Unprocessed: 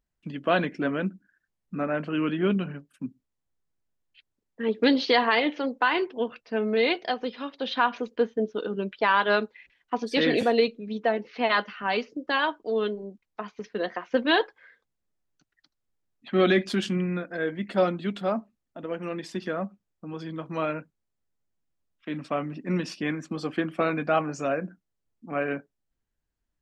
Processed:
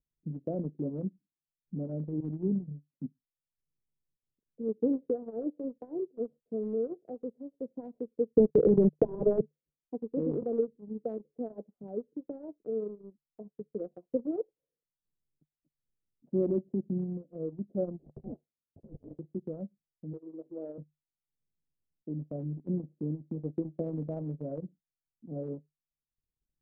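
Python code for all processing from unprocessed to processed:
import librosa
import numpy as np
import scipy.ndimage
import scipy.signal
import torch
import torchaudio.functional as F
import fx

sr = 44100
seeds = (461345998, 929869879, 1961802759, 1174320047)

y = fx.chain(x, sr, fx.low_shelf(hz=330.0, db=3.5),
    fx.fixed_phaser(hz=1600.0, stages=4),
    fx.band_widen(depth_pct=100), at=(2.2, 2.91))
y = fx.chain(y, sr, fx.leveller(passes=5),
    fx.transient(attack_db=-3, sustain_db=-9),
    fx.band_squash(depth_pct=100), at=(8.36, 9.41))
y = fx.chain(y, sr, fx.steep_highpass(hz=750.0, slope=48),
    fx.high_shelf(hz=2800.0, db=5.0),
    fx.sample_hold(seeds[0], rate_hz=1500.0, jitter_pct=0), at=(17.98, 19.19))
y = fx.chain(y, sr, fx.law_mismatch(coded='mu'),
    fx.highpass(hz=310.0, slope=24),
    fx.doubler(ms=15.0, db=-14), at=(20.13, 20.78))
y = scipy.signal.sosfilt(scipy.signal.butter(6, 540.0, 'lowpass', fs=sr, output='sos'), y)
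y = fx.peak_eq(y, sr, hz=150.0, db=11.0, octaves=0.21)
y = fx.transient(y, sr, attack_db=3, sustain_db=-11)
y = y * 10.0 ** (-7.5 / 20.0)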